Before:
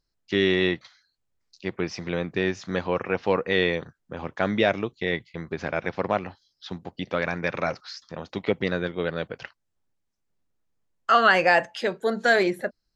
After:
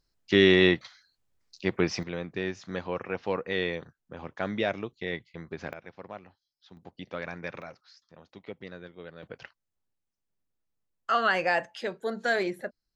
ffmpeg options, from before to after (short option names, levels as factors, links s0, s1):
-af "asetnsamples=n=441:p=0,asendcmd='2.03 volume volume -7dB;5.73 volume volume -17.5dB;6.77 volume volume -10dB;7.62 volume volume -17dB;9.23 volume volume -7dB',volume=1.33"